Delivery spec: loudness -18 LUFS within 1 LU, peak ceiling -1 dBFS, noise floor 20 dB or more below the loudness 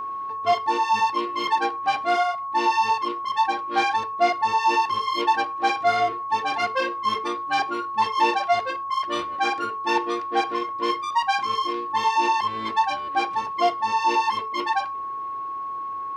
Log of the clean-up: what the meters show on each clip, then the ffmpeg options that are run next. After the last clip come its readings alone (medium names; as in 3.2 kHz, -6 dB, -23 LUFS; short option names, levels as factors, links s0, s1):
steady tone 1.1 kHz; tone level -28 dBFS; loudness -23.5 LUFS; peak level -9.0 dBFS; loudness target -18.0 LUFS
-> -af "bandreject=f=1100:w=30"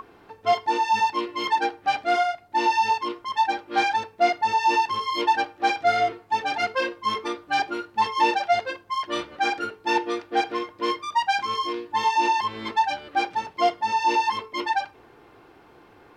steady tone not found; loudness -24.5 LUFS; peak level -9.5 dBFS; loudness target -18.0 LUFS
-> -af "volume=2.11"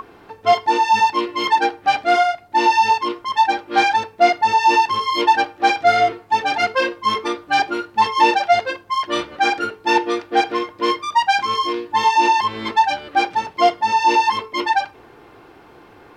loudness -18.0 LUFS; peak level -3.0 dBFS; noise floor -47 dBFS